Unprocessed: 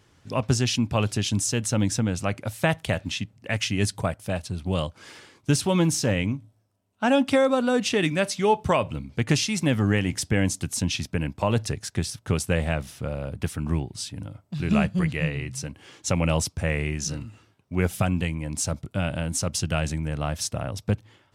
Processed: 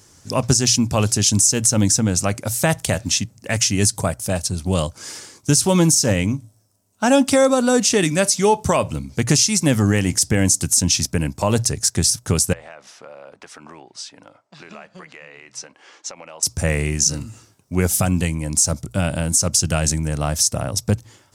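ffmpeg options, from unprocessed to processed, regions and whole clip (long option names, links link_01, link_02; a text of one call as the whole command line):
ffmpeg -i in.wav -filter_complex "[0:a]asettb=1/sr,asplit=3[link_01][link_02][link_03];[link_01]atrim=end=12.534[link_04];[link_02]atrim=start=12.53:end=16.43,asetpts=PTS-STARTPTS,afade=type=in:duration=0.004:curve=qsin,afade=type=out:start_time=3.896:duration=0.004:curve=qsin,highpass=620,lowpass=2600,acompressor=threshold=-42dB:ratio=4:attack=3.2:release=140:knee=1:detection=peak[link_05];[link_03]atrim=start=16.426[link_06];[link_04][link_05]acrossfade=duration=0.004:curve1=hsin:curve2=qsin[link_07];[link_07][link_06]acrossfade=duration=0.004:curve1=qsin:curve2=hsin,highshelf=frequency=4400:width_type=q:width=1.5:gain=11,bandreject=frequency=60:width_type=h:width=6,bandreject=frequency=120:width_type=h:width=6,alimiter=limit=-11.5dB:level=0:latency=1:release=78,volume=6dB" out.wav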